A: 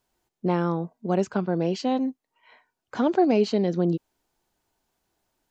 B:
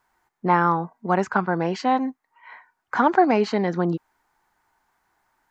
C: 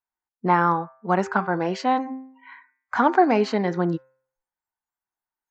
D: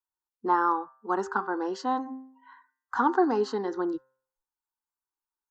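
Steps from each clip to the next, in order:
band shelf 1300 Hz +13 dB
spectral noise reduction 26 dB; de-hum 131.1 Hz, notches 20
fixed phaser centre 620 Hz, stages 6; gain -3 dB

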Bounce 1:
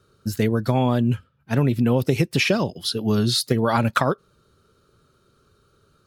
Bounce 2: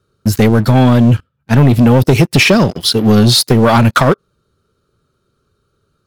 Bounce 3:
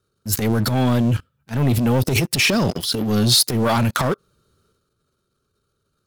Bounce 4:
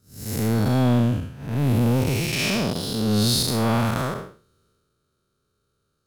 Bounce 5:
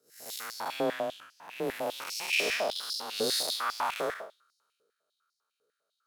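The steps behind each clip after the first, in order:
low shelf 390 Hz +3 dB; sample leveller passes 3; gain +1.5 dB
transient shaper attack -10 dB, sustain +8 dB; high shelf 4600 Hz +7.5 dB; gain -9 dB
time blur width 0.244 s
frequency shift +23 Hz; stepped high-pass 10 Hz 460–5000 Hz; gain -8 dB

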